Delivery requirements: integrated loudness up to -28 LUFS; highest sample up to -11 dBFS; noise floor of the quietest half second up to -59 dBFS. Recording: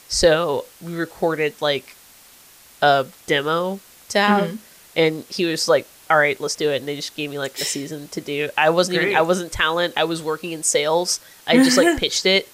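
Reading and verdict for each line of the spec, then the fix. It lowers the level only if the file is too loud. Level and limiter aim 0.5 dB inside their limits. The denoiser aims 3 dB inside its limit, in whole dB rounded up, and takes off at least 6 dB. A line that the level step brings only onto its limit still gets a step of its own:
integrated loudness -20.0 LUFS: fail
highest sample -4.0 dBFS: fail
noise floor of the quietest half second -48 dBFS: fail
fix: denoiser 6 dB, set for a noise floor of -48 dBFS; gain -8.5 dB

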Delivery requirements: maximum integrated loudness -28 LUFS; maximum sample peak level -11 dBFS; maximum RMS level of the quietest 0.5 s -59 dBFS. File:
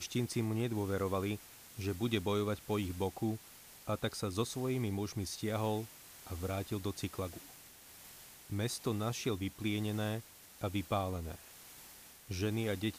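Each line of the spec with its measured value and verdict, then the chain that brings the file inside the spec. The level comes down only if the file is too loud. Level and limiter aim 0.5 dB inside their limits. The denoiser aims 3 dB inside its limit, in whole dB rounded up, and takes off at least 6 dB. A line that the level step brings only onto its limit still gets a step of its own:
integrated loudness -37.5 LUFS: OK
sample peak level -18.5 dBFS: OK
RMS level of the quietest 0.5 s -56 dBFS: fail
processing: denoiser 6 dB, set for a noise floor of -56 dBFS

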